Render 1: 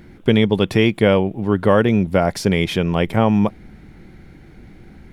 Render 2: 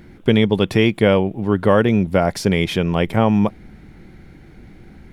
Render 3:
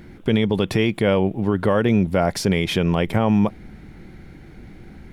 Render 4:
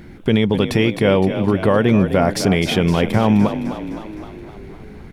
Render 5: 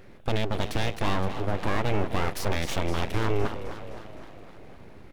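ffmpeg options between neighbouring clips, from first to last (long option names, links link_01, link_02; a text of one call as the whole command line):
ffmpeg -i in.wav -af anull out.wav
ffmpeg -i in.wav -af "alimiter=limit=-10dB:level=0:latency=1:release=52,volume=1dB" out.wav
ffmpeg -i in.wav -filter_complex "[0:a]asplit=8[link_01][link_02][link_03][link_04][link_05][link_06][link_07][link_08];[link_02]adelay=257,afreqshift=36,volume=-11dB[link_09];[link_03]adelay=514,afreqshift=72,volume=-15.4dB[link_10];[link_04]adelay=771,afreqshift=108,volume=-19.9dB[link_11];[link_05]adelay=1028,afreqshift=144,volume=-24.3dB[link_12];[link_06]adelay=1285,afreqshift=180,volume=-28.7dB[link_13];[link_07]adelay=1542,afreqshift=216,volume=-33.2dB[link_14];[link_08]adelay=1799,afreqshift=252,volume=-37.6dB[link_15];[link_01][link_09][link_10][link_11][link_12][link_13][link_14][link_15]amix=inputs=8:normalize=0,volume=3dB" out.wav
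ffmpeg -i in.wav -af "aeval=exprs='abs(val(0))':channel_layout=same,volume=-8.5dB" out.wav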